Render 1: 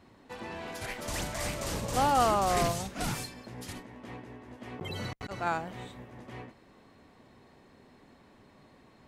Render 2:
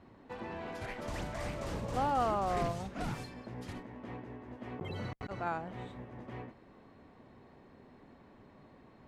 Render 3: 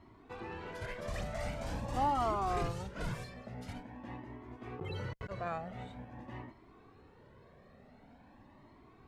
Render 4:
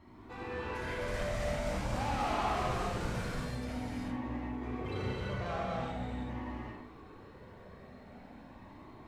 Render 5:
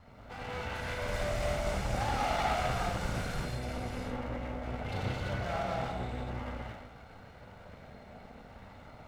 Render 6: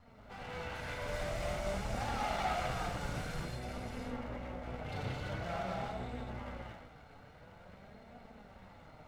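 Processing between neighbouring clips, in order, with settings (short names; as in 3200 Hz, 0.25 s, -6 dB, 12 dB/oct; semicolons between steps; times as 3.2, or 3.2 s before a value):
LPF 1600 Hz 6 dB/oct; in parallel at +2.5 dB: compressor, threshold -40 dBFS, peak gain reduction 16.5 dB; on the sum: gain -6.5 dB
cascading flanger rising 0.46 Hz; gain +3.5 dB
soft clip -37 dBFS, distortion -7 dB; non-linear reverb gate 0.41 s flat, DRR -6.5 dB
minimum comb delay 1.4 ms; gain +3 dB
flange 0.49 Hz, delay 4.1 ms, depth 3 ms, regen +65%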